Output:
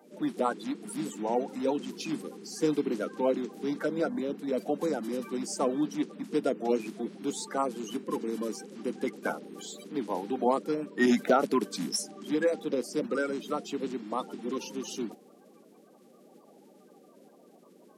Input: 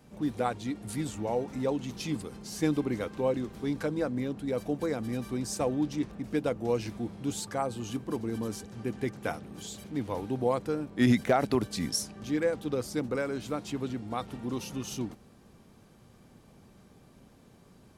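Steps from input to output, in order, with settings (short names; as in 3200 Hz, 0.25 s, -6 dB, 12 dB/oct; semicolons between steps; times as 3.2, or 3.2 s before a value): bin magnitudes rounded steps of 30 dB; steep high-pass 180 Hz 48 dB/oct; bell 650 Hz +3 dB 2.8 oct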